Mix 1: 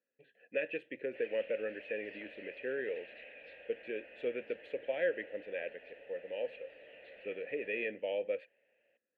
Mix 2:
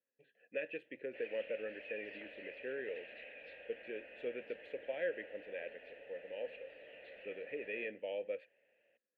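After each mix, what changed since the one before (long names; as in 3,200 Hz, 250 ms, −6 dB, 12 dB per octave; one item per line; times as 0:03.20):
speech −5.0 dB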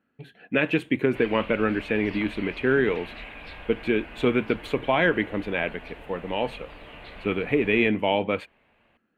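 speech +9.0 dB
master: remove formant filter e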